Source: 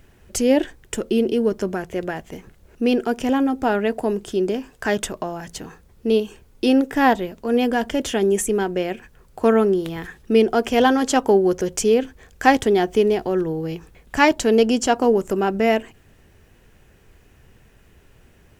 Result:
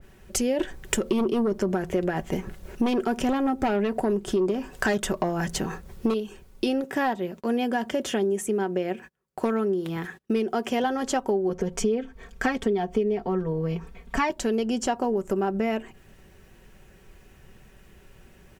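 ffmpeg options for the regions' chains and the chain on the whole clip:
-filter_complex "[0:a]asettb=1/sr,asplit=3[s0][s1][s2];[s0]atrim=end=0.594[s3];[s1]atrim=start=0.59:end=6.14,asetpts=PTS-STARTPTS,afade=t=in:d=0.004:c=qsin,afade=t=out:st=5.546:d=0.004:c=qsin,tremolo=f=6.2:d=0.29,aeval=exprs='0.376*sin(PI/2*2*val(0)/0.376)':c=same[s4];[s2]atrim=start=6.136[s5];[s3][s4]acrossfade=d=0.004:c1=hsin:c2=qsin[s6];[s6][s5]acrossfade=d=0.004:c1=qsin:c2=hsin,asettb=1/sr,asplit=3[s7][s8][s9];[s7]atrim=end=6.844[s10];[s8]atrim=start=6.84:end=10.84,asetpts=PTS-STARTPTS,afade=t=in:d=0.004:c=qsin,afade=t=out:st=3.996:d=0.004:c=qsin,highpass=120,agate=range=0.0501:threshold=0.00316:ratio=16:release=100:detection=peak,volume=2.11,asoftclip=hard,volume=0.473[s11];[s9]atrim=start=10.836[s12];[s10][s11]acrossfade=d=0.004:c1=hsin:c2=qsin[s13];[s13][s12]acrossfade=d=0.004:c1=qsin:c2=hsin,asettb=1/sr,asplit=3[s14][s15][s16];[s14]atrim=end=11.494[s17];[s15]atrim=start=11.49:end=14.3,asetpts=PTS-STARTPTS,afade=t=in:d=0.004:c=qsin,afade=t=out:st=2.806:d=0.004:c=qsin,highshelf=f=4900:g=-10.5,aecho=1:1:4.4:0.96,atrim=end_sample=123921[s18];[s16]atrim=start=14.296[s19];[s17][s18]acrossfade=d=0.004:c1=hsin:c2=qsin[s20];[s20][s19]acrossfade=d=0.004:c1=qsin:c2=hsin,aecho=1:1:5.3:0.39,acompressor=threshold=0.0794:ratio=6,adynamicequalizer=threshold=0.00631:dfrequency=2000:dqfactor=0.7:tfrequency=2000:tqfactor=0.7:attack=5:release=100:ratio=0.375:range=2.5:mode=cutabove:tftype=highshelf"

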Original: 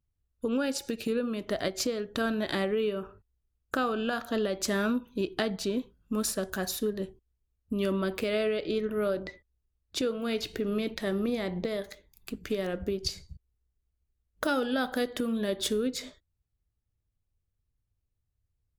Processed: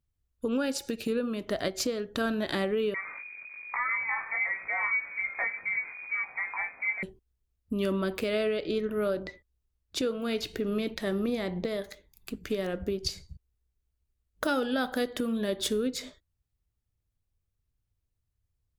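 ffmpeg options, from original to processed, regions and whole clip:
-filter_complex "[0:a]asettb=1/sr,asplit=3[s0][s1][s2];[s0]atrim=end=2.944[s3];[s1]atrim=start=2.94:end=7.03,asetpts=PTS-STARTPTS,afade=t=in:d=0.004:c=qsin,afade=t=out:st=4.086:d=0.004:c=qsin,aeval=exprs='val(0)+0.5*0.0178*sgn(val(0))':c=same,flanger=delay=17:depth=3.8:speed=1.2,lowpass=f=2100:t=q:w=0.5098,lowpass=f=2100:t=q:w=0.6013,lowpass=f=2100:t=q:w=0.9,lowpass=f=2100:t=q:w=2.563,afreqshift=-2500[s4];[s2]atrim=start=7.026[s5];[s3][s4]acrossfade=d=0.004:c1=hsin:c2=qsin[s6];[s6][s5]acrossfade=d=0.004:c1=qsin:c2=hsin"

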